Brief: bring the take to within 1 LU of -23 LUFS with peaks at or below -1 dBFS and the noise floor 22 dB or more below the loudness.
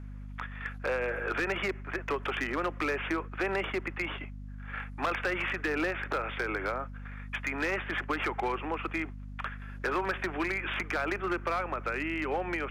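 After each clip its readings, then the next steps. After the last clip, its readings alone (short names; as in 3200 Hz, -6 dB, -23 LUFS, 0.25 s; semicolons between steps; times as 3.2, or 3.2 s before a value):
clipped 1.6%; flat tops at -24.5 dBFS; hum 50 Hz; harmonics up to 250 Hz; hum level -40 dBFS; loudness -32.5 LUFS; peak -24.5 dBFS; loudness target -23.0 LUFS
-> clip repair -24.5 dBFS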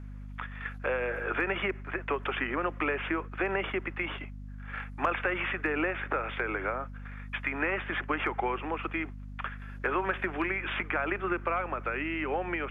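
clipped 0.0%; hum 50 Hz; harmonics up to 250 Hz; hum level -39 dBFS
-> notches 50/100/150/200/250 Hz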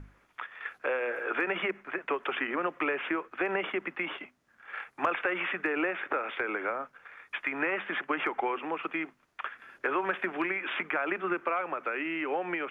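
hum none; loudness -32.0 LUFS; peak -15.5 dBFS; loudness target -23.0 LUFS
-> gain +9 dB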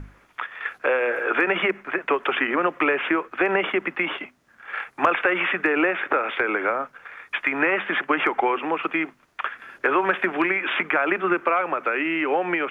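loudness -23.0 LUFS; peak -6.5 dBFS; noise floor -58 dBFS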